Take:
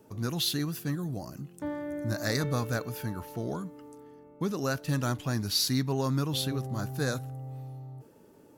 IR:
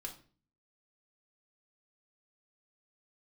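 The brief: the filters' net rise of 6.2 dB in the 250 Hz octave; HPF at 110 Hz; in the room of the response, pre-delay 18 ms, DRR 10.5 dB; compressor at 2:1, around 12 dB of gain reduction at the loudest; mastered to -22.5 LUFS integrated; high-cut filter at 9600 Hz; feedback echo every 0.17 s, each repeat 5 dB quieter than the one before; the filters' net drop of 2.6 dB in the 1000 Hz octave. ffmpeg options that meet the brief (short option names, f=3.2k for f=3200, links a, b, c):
-filter_complex "[0:a]highpass=110,lowpass=9.6k,equalizer=f=250:t=o:g=8,equalizer=f=1k:t=o:g=-4,acompressor=threshold=-41dB:ratio=2,aecho=1:1:170|340|510|680|850|1020|1190:0.562|0.315|0.176|0.0988|0.0553|0.031|0.0173,asplit=2[a][b];[1:a]atrim=start_sample=2205,adelay=18[c];[b][c]afir=irnorm=-1:irlink=0,volume=-7.5dB[d];[a][d]amix=inputs=2:normalize=0,volume=14dB"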